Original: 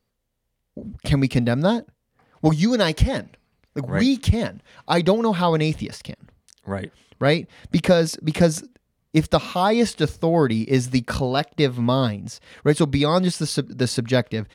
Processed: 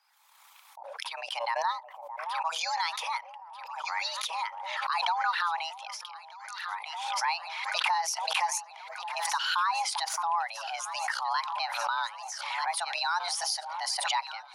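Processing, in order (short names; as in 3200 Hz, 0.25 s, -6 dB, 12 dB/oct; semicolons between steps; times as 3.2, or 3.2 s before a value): formant sharpening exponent 1.5; HPF 640 Hz 24 dB/oct; limiter -17.5 dBFS, peak gain reduction 11 dB; frequency shift +340 Hz; echo with dull and thin repeats by turns 0.619 s, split 950 Hz, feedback 67%, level -13.5 dB; backwards sustainer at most 34 dB/s; gain -2 dB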